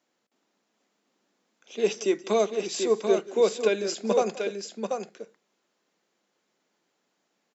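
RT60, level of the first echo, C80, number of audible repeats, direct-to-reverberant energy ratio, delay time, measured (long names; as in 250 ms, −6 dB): no reverb audible, −20.0 dB, no reverb audible, 2, no reverb audible, 181 ms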